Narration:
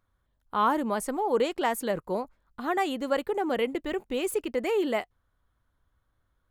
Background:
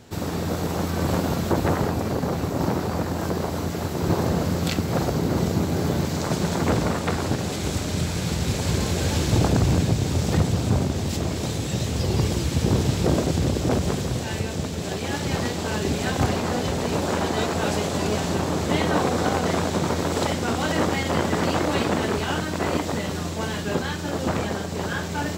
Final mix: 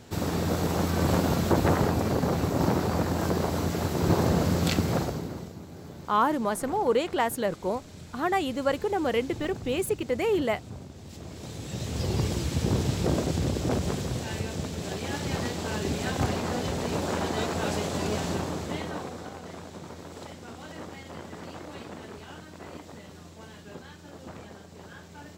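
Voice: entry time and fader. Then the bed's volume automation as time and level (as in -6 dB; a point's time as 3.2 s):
5.55 s, +1.0 dB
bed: 4.88 s -1 dB
5.55 s -20 dB
10.96 s -20 dB
12.03 s -5 dB
18.31 s -5 dB
19.33 s -18.5 dB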